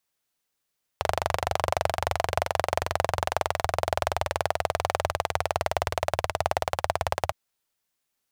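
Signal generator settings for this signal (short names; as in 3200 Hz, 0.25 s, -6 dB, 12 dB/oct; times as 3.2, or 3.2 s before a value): single-cylinder engine model, changing speed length 6.31 s, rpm 2900, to 2100, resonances 86/660 Hz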